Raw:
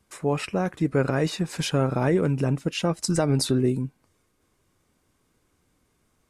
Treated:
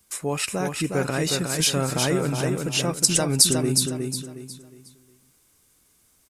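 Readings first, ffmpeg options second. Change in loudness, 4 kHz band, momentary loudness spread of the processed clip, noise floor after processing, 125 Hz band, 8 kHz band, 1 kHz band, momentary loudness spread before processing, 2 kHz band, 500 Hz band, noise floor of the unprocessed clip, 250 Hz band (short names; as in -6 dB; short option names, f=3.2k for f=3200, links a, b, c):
+2.5 dB, +9.0 dB, 12 LU, -62 dBFS, -1.5 dB, +14.0 dB, +0.5 dB, 5 LU, +3.5 dB, -1.0 dB, -70 dBFS, -1.5 dB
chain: -af "aecho=1:1:362|724|1086|1448:0.596|0.191|0.061|0.0195,crystalizer=i=5:c=0,volume=-3dB"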